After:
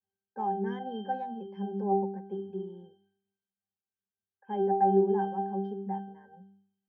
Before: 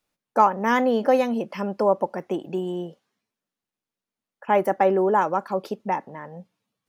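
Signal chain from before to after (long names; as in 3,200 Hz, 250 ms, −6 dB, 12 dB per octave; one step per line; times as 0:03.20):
mains-hum notches 50/100/150/200/250/300/350/400 Hz
resonances in every octave G, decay 0.58 s
every ending faded ahead of time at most 210 dB per second
level +8.5 dB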